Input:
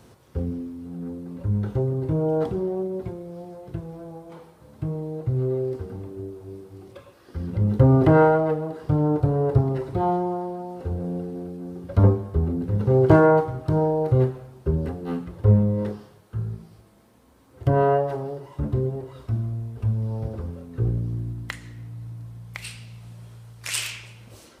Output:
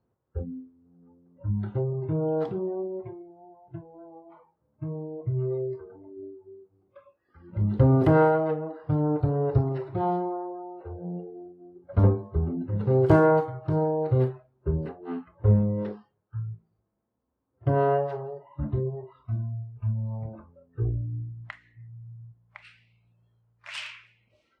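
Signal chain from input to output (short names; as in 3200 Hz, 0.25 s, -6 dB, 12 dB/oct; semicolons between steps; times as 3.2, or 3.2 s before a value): spectral noise reduction 20 dB; low-pass opened by the level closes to 1300 Hz, open at -14.5 dBFS; gain -3.5 dB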